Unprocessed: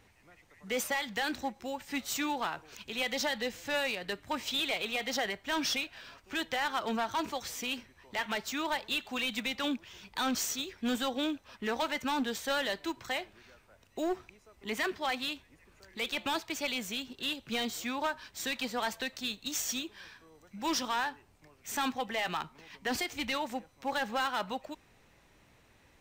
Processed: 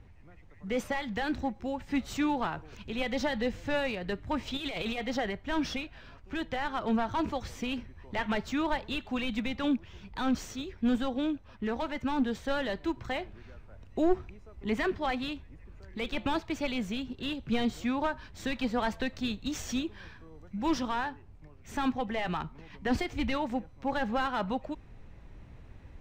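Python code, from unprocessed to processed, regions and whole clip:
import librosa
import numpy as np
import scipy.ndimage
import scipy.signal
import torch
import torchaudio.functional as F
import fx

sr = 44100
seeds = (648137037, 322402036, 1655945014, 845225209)

y = fx.chain(x, sr, fx.over_compress(threshold_db=-37.0, ratio=-1.0),
    fx.high_shelf(hz=3600.0, db=7.5), at=(4.57, 4.98))
y = fx.riaa(y, sr, side='playback')
y = fx.rider(y, sr, range_db=10, speed_s=2.0)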